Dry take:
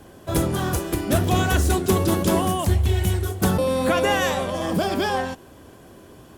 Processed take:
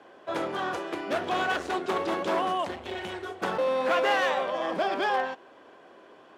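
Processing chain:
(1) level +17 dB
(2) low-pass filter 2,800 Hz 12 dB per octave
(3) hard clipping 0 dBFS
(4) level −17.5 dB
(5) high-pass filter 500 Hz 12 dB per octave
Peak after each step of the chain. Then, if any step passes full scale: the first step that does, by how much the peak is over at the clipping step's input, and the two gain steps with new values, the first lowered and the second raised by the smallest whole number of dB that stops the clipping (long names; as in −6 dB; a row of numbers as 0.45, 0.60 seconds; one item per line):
+7.5, +7.5, 0.0, −17.5, −13.5 dBFS
step 1, 7.5 dB
step 1 +9 dB, step 4 −9.5 dB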